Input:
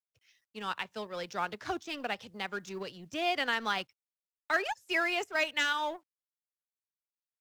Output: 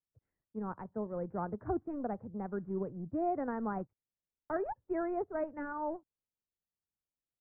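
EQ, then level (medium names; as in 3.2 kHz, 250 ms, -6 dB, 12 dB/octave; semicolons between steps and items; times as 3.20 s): Gaussian low-pass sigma 8.2 samples; distance through air 230 m; bass shelf 300 Hz +11.5 dB; 0.0 dB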